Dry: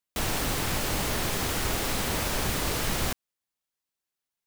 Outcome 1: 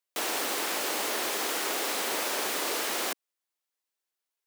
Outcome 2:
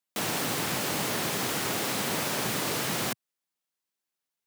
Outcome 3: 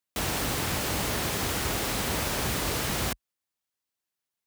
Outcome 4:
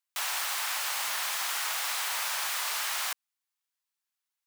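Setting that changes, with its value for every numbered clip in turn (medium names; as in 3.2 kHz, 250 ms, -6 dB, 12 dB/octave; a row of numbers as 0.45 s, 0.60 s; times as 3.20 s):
high-pass, cutoff frequency: 320 Hz, 130 Hz, 45 Hz, 870 Hz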